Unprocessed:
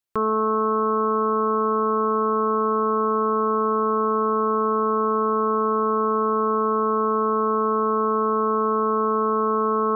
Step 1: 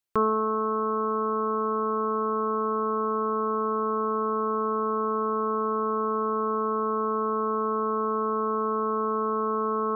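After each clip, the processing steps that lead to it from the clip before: reverb removal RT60 1.3 s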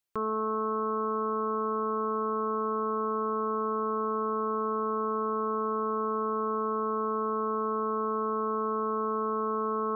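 limiter -22.5 dBFS, peak gain reduction 8.5 dB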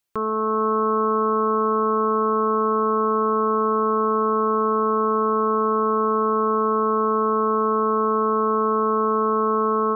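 AGC gain up to 3.5 dB; gain +6 dB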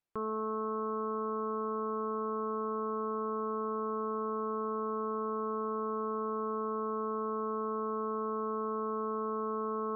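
LPF 1400 Hz 6 dB/oct; limiter -23 dBFS, peak gain reduction 9 dB; gain -4.5 dB

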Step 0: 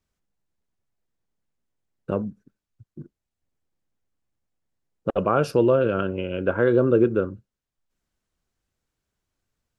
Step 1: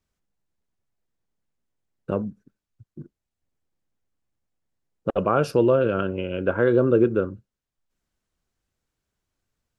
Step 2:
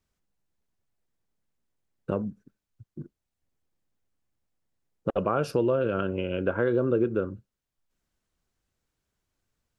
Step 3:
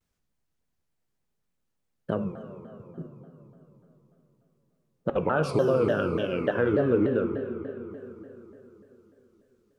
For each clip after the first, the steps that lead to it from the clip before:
nothing audible
compressor 2:1, threshold -25 dBFS, peak gain reduction 7 dB
reverb RT60 3.8 s, pre-delay 3 ms, DRR 5.5 dB; shaped vibrato saw down 3.4 Hz, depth 250 cents

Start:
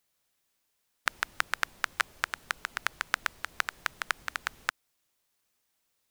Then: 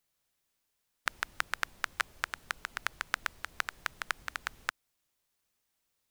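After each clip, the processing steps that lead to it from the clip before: low shelf 110 Hz +6 dB; gain -3.5 dB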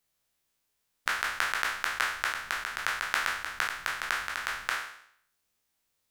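spectral trails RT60 0.65 s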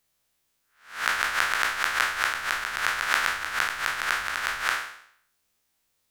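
spectral swells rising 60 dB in 0.43 s; gain +3 dB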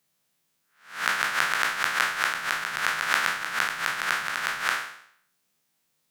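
resonant low shelf 110 Hz -11.5 dB, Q 3

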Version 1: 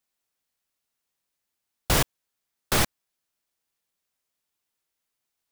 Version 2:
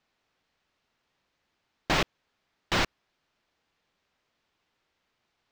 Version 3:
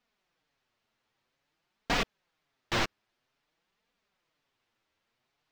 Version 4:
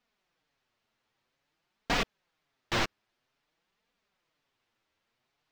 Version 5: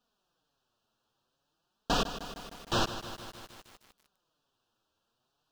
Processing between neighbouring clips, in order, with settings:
in parallel at -1 dB: negative-ratio compressor -24 dBFS; on the sum: wavefolder -19.5 dBFS; air absorption 200 m; gain +6 dB
flange 0.51 Hz, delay 4 ms, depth 5.8 ms, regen +1%
nothing audible
Butterworth band-stop 2100 Hz, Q 1.7; lo-fi delay 0.154 s, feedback 80%, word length 8-bit, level -11 dB; gain +1.5 dB

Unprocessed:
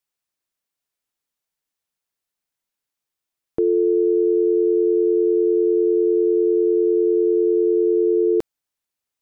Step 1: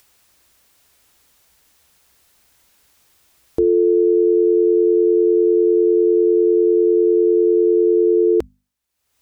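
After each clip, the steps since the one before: bell 62 Hz +14 dB 0.75 oct; notches 50/100/150/200/250 Hz; upward compressor, threshold -41 dBFS; gain +3 dB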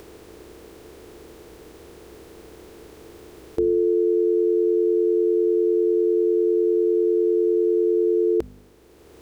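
per-bin compression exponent 0.4; gain -5.5 dB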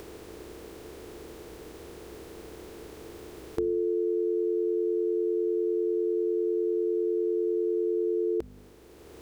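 compressor 2:1, threshold -31 dBFS, peak gain reduction 8 dB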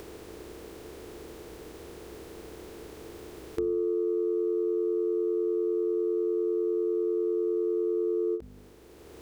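soft clip -16.5 dBFS, distortion -30 dB; ending taper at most 230 dB/s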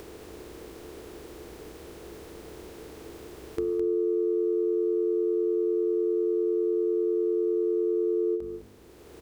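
echo 0.211 s -8.5 dB

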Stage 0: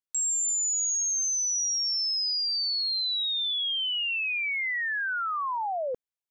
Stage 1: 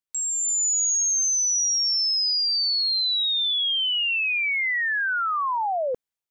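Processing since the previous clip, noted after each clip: AGC gain up to 5 dB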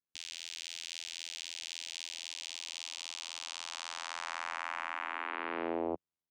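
limiter -30 dBFS, peak gain reduction 10.5 dB; vocoder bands 4, saw 83.8 Hz; gain -7.5 dB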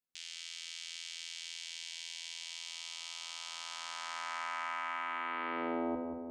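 darkening echo 0.182 s, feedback 62%, low-pass 1100 Hz, level -5 dB; shoebox room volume 2700 m³, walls furnished, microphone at 2 m; gain -2.5 dB

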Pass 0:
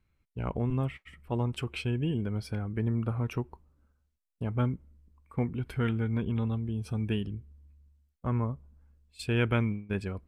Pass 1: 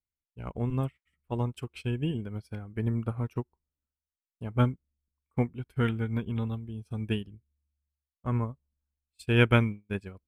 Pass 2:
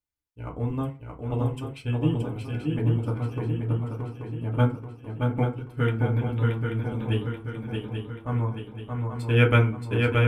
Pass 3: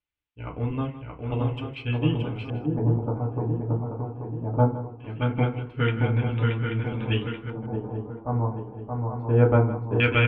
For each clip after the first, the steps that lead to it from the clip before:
high shelf 5800 Hz +9 dB; upward expander 2.5:1, over -45 dBFS; gain +7 dB
swung echo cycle 0.833 s, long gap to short 3:1, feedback 49%, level -4 dB; FDN reverb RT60 0.32 s, low-frequency decay 1×, high-frequency decay 0.5×, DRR -0.5 dB; gain -1 dB
LFO low-pass square 0.2 Hz 810–2800 Hz; echo 0.16 s -14 dB

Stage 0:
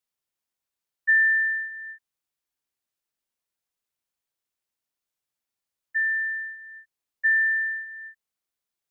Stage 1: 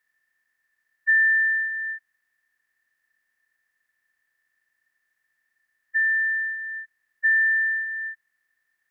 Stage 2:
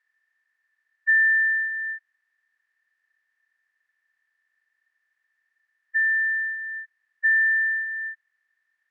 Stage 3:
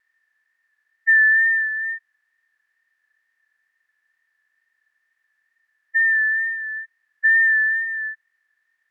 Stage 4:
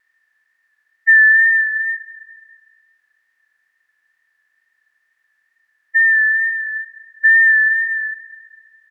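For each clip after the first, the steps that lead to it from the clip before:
per-bin compression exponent 0.6
band-pass 1700 Hz, Q 0.54
vibrato 2.2 Hz 30 cents; gain +4 dB
feedback echo 0.206 s, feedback 58%, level -20 dB; gain +5 dB

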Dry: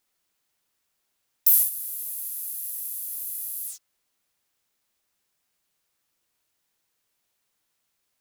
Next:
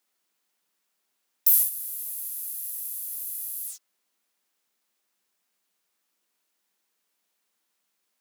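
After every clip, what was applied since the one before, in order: Chebyshev high-pass 170 Hz, order 10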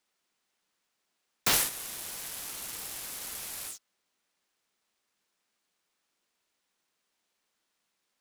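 median filter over 3 samples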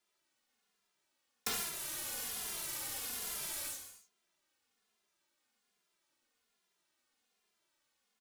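compressor 10:1, threshold -32 dBFS, peak gain reduction 11.5 dB; non-linear reverb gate 0.33 s falling, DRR 2 dB; endless flanger 2.5 ms -1.2 Hz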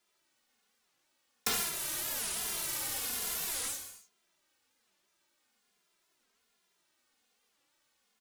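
record warp 45 rpm, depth 250 cents; gain +5 dB

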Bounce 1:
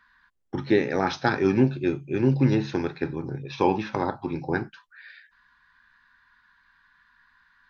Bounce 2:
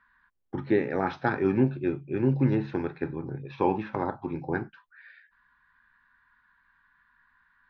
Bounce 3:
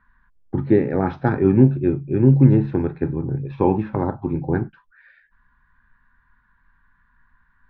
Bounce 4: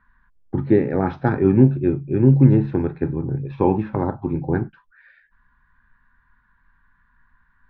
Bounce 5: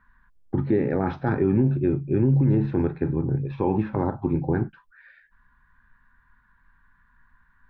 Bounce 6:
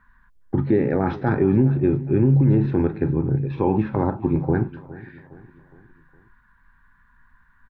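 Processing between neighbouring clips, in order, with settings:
LPF 2200 Hz 12 dB/oct; gain -3 dB
tilt -3.5 dB/oct; gain +2.5 dB
nothing audible
limiter -12.5 dBFS, peak gain reduction 11 dB
feedback echo 0.412 s, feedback 48%, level -18.5 dB; gain +3 dB

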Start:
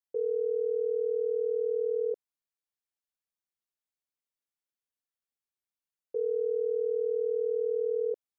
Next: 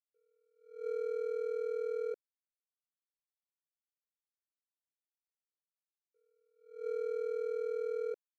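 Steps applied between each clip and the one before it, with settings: median filter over 41 samples; attack slew limiter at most 120 dB/s; gain -5.5 dB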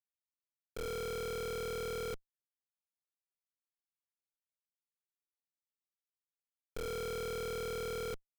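LPF 2400 Hz 12 dB/oct; Schmitt trigger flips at -44 dBFS; gain +2.5 dB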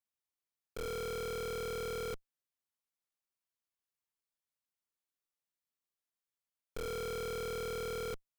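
bell 1100 Hz +3 dB 0.32 oct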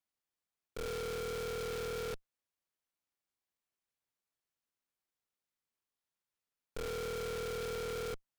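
noise-modulated delay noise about 2500 Hz, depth 0.051 ms

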